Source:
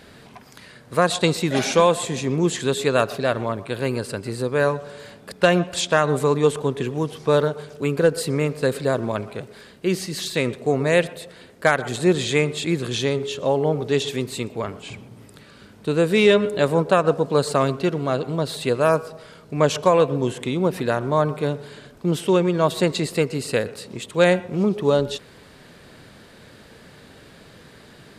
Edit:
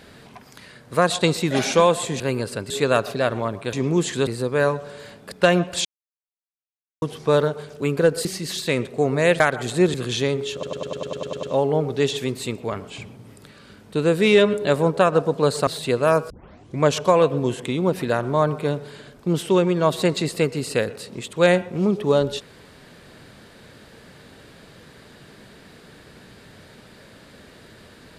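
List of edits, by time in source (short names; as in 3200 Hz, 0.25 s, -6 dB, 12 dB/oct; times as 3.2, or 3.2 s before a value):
2.2–2.74 swap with 3.77–4.27
5.85–7.02 mute
8.25–9.93 cut
11.08–11.66 cut
12.2–12.76 cut
13.35 stutter 0.10 s, 10 plays
17.59–18.45 cut
19.08 tape start 0.51 s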